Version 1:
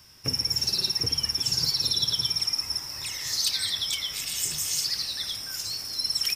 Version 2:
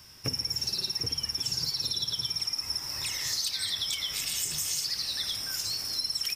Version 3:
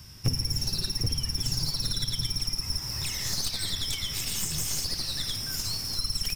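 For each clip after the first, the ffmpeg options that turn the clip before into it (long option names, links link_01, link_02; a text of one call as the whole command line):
ffmpeg -i in.wav -af "acompressor=threshold=-29dB:ratio=6,volume=1.5dB" out.wav
ffmpeg -i in.wav -af "aeval=exprs='clip(val(0),-1,0.0211)':channel_layout=same,bass=frequency=250:gain=13,treble=frequency=4000:gain=2" out.wav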